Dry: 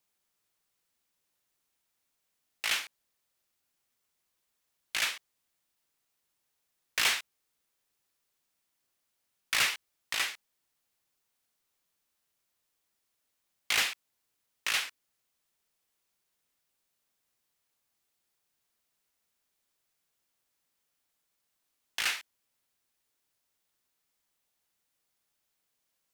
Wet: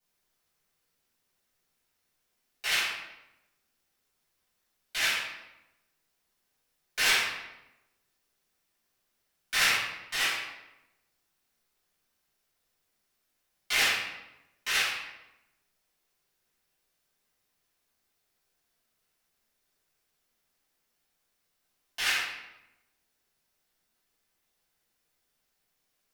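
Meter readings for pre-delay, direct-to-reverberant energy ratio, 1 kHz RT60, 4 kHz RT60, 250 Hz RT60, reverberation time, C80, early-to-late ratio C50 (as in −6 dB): 4 ms, −13.0 dB, 0.90 s, 0.70 s, 1.2 s, 0.95 s, 3.5 dB, 0.5 dB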